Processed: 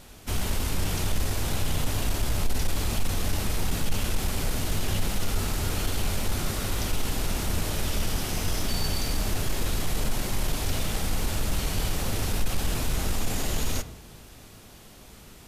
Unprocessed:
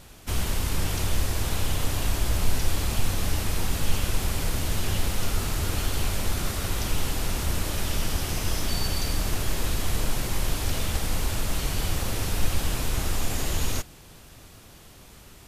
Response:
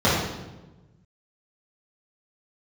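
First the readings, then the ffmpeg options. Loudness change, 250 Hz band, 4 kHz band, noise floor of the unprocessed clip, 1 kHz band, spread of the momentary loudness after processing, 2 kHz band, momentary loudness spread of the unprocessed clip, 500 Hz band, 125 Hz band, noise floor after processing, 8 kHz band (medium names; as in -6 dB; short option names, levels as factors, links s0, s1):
-1.0 dB, +0.5 dB, -1.0 dB, -49 dBFS, -0.5 dB, 3 LU, -1.0 dB, 1 LU, 0.0 dB, -1.0 dB, -48 dBFS, -1.0 dB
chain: -filter_complex "[0:a]equalizer=f=84:t=o:w=0.41:g=-4,asoftclip=type=tanh:threshold=0.168,asplit=2[s0][s1];[1:a]atrim=start_sample=2205[s2];[s1][s2]afir=irnorm=-1:irlink=0,volume=0.0237[s3];[s0][s3]amix=inputs=2:normalize=0"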